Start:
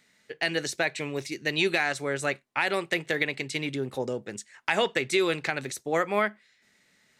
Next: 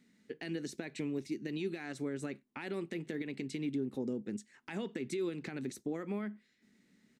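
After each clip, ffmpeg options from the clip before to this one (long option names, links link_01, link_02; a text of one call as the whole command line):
ffmpeg -i in.wav -af "alimiter=limit=-20dB:level=0:latency=1:release=109,firequalizer=gain_entry='entry(130,0);entry(220,12);entry(590,-8)':delay=0.05:min_phase=1,acompressor=threshold=-35dB:ratio=2,volume=-2.5dB" out.wav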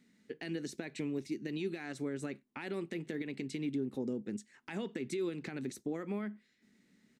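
ffmpeg -i in.wav -af anull out.wav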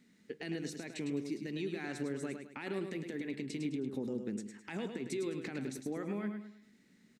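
ffmpeg -i in.wav -filter_complex "[0:a]alimiter=level_in=7dB:limit=-24dB:level=0:latency=1:release=166,volume=-7dB,asplit=2[link_01][link_02];[link_02]aecho=0:1:105|210|315|420:0.447|0.161|0.0579|0.0208[link_03];[link_01][link_03]amix=inputs=2:normalize=0,volume=1.5dB" out.wav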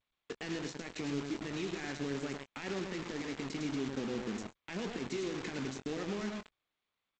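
ffmpeg -i in.wav -filter_complex "[0:a]acrusher=bits=6:mix=0:aa=0.000001,asplit=2[link_01][link_02];[link_02]adelay=22,volume=-11dB[link_03];[link_01][link_03]amix=inputs=2:normalize=0" -ar 16000 -c:a g722 out.g722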